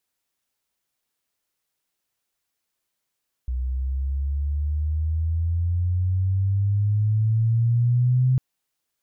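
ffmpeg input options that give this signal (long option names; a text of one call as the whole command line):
ffmpeg -f lavfi -i "aevalsrc='pow(10,(-23+7.5*t/4.9)/20)*sin(2*PI*62*4.9/log(130/62)*(exp(log(130/62)*t/4.9)-1))':duration=4.9:sample_rate=44100" out.wav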